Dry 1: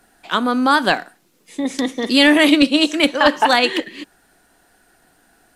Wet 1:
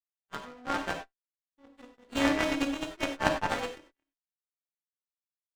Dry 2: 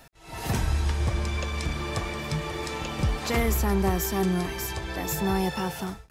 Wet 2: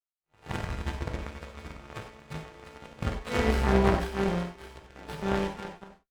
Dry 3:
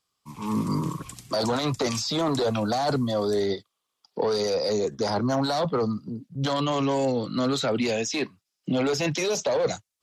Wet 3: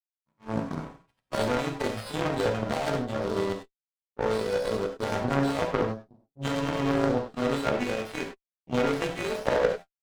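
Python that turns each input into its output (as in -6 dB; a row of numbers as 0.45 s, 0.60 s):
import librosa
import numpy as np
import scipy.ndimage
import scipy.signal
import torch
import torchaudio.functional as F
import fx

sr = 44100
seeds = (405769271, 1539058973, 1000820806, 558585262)

y = fx.freq_snap(x, sr, grid_st=2)
y = fx.high_shelf(y, sr, hz=6900.0, db=-10.0)
y = fx.power_curve(y, sr, exponent=3.0)
y = fx.spacing_loss(y, sr, db_at_10k=21)
y = fx.rev_gated(y, sr, seeds[0], gate_ms=120, shape='flat', drr_db=3.5)
y = fx.running_max(y, sr, window=5)
y = y * 10.0 ** (-6 / 20.0) / np.max(np.abs(y))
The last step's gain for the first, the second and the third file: -2.0 dB, +11.0 dB, +10.0 dB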